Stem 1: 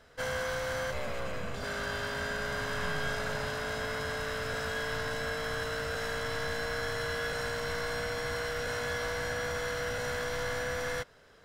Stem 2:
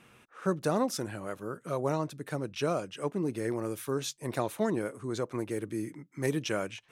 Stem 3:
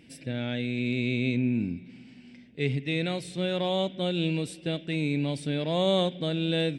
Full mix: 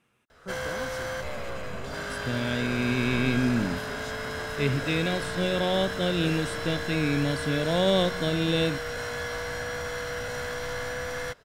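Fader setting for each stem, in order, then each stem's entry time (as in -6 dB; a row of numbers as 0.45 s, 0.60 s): +1.0 dB, -12.0 dB, +1.5 dB; 0.30 s, 0.00 s, 2.00 s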